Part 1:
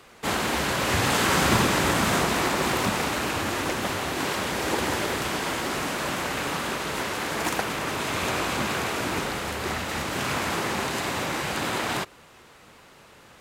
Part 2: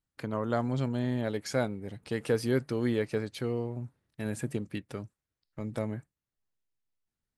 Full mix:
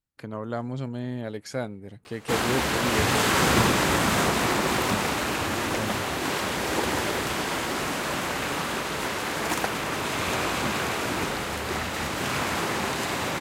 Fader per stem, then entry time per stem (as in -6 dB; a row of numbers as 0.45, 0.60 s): 0.0, -1.5 dB; 2.05, 0.00 s